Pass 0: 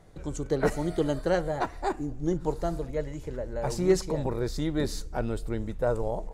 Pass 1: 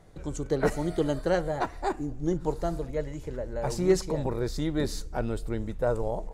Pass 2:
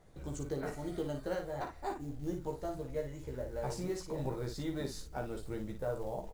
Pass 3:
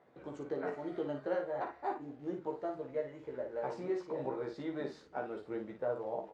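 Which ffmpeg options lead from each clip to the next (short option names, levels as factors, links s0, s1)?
-af anull
-filter_complex "[0:a]alimiter=limit=0.0944:level=0:latency=1:release=440,acrusher=bits=7:mode=log:mix=0:aa=0.000001,asplit=2[s0][s1];[s1]aecho=0:1:15|56:0.668|0.501[s2];[s0][s2]amix=inputs=2:normalize=0,volume=0.398"
-af "highpass=290,lowpass=2200,flanger=delay=8:depth=6.9:regen=73:speed=0.34:shape=sinusoidal,volume=2.11"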